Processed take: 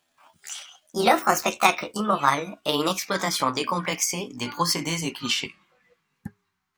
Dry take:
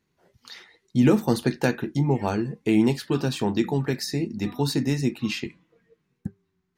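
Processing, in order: gliding pitch shift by +9 st ending unshifted; resonant low shelf 640 Hz -11.5 dB, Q 1.5; gain +8 dB

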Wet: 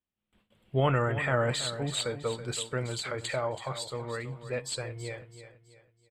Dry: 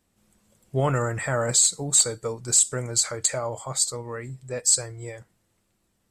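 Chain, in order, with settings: gate with hold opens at -51 dBFS; resonant high shelf 4400 Hz -12.5 dB, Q 3; feedback echo 0.328 s, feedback 37%, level -12 dB; gain -2.5 dB

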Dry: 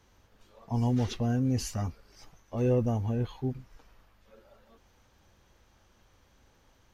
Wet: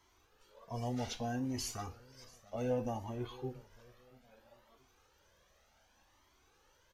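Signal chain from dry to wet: tone controls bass -11 dB, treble +1 dB; feedback echo 0.68 s, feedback 31%, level -22 dB; on a send at -10 dB: reverb RT60 0.40 s, pre-delay 14 ms; on the sum: cascading flanger rising 0.64 Hz; gain +1 dB

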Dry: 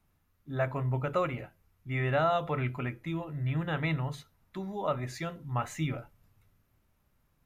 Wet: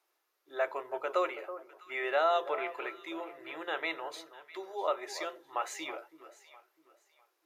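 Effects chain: elliptic high-pass 350 Hz, stop band 40 dB; bell 4900 Hz +5.5 dB 1.1 oct; echo with dull and thin repeats by turns 0.326 s, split 1300 Hz, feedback 51%, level -12 dB

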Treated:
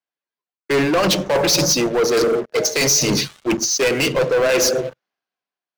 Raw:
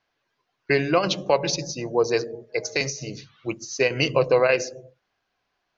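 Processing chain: HPF 160 Hz 24 dB/oct; high shelf 3900 Hz +2.5 dB; reverse; compressor 4:1, threshold -33 dBFS, peak gain reduction 16 dB; reverse; sample leveller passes 5; three-band expander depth 40%; gain +6.5 dB

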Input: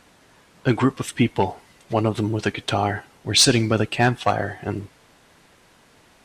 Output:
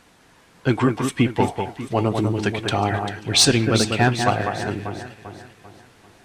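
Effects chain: notch 590 Hz, Q 15; on a send: echo with dull and thin repeats by turns 0.197 s, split 2300 Hz, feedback 65%, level -5.5 dB

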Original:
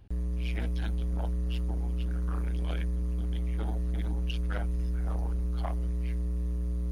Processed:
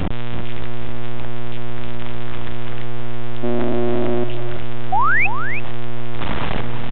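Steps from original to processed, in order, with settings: 1.8–2.69 low shelf 120 Hz -5.5 dB; 6.08–6.61 notches 60/120/180/240/300/360/420/480/540 Hz; AGC gain up to 12 dB; fuzz box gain 58 dB, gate -59 dBFS; 3.43–4.24 small resonant body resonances 310/620 Hz, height 9 dB, ringing for 40 ms; full-wave rectifier; 4.92–5.27 painted sound rise 710–2700 Hz -17 dBFS; echo 0.328 s -9 dB; downsampling 8000 Hz

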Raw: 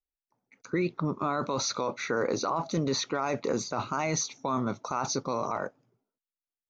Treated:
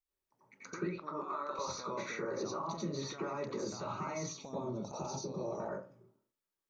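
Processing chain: 0.84–1.59 HPF 580 Hz 12 dB/oct; 4.3–5.6 band shelf 1500 Hz -14.5 dB 1.3 oct; limiter -26 dBFS, peak gain reduction 8.5 dB; compressor 6:1, threshold -43 dBFS, peak gain reduction 12 dB; reverb RT60 0.35 s, pre-delay 86 ms, DRR -8.5 dB; gain -3 dB

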